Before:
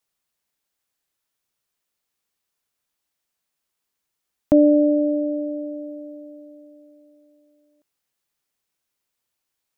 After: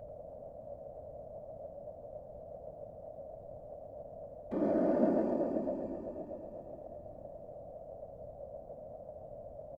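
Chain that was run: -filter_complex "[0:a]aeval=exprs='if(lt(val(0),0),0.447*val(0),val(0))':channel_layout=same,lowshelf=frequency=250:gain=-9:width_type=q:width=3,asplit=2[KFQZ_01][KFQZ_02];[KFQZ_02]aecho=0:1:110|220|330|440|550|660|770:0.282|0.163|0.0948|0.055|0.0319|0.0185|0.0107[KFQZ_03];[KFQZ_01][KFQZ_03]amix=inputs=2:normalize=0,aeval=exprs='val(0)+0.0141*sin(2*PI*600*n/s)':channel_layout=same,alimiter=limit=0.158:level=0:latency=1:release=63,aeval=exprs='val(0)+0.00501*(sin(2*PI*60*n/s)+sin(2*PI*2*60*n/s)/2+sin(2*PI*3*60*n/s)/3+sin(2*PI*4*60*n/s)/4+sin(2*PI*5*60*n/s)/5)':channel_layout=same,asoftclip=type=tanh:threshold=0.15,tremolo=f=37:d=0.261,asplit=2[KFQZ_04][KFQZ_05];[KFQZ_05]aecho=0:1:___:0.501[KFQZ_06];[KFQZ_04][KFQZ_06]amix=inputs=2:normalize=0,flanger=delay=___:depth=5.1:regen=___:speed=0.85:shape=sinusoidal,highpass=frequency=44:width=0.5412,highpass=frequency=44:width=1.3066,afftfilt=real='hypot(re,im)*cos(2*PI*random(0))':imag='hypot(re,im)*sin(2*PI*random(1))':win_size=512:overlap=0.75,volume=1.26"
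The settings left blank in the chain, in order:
88, 0.4, 79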